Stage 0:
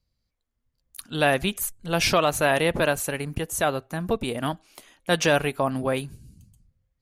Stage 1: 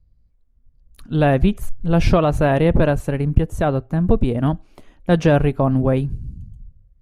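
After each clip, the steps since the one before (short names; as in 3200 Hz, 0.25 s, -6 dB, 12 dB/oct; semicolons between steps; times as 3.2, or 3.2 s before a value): tilt -4.5 dB/oct; gain +1 dB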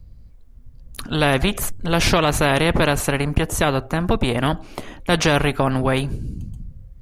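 spectral compressor 2:1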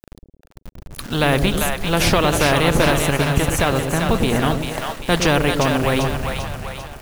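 bit-crush 6-bit; split-band echo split 550 Hz, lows 0.109 s, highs 0.394 s, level -4.5 dB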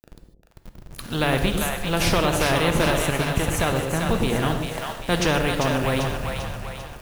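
non-linear reverb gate 0.17 s flat, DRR 7.5 dB; gain -5 dB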